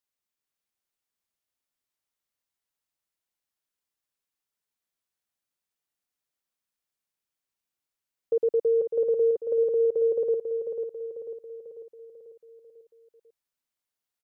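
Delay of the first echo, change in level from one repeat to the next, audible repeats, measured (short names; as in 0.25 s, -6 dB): 0.494 s, -6.0 dB, 5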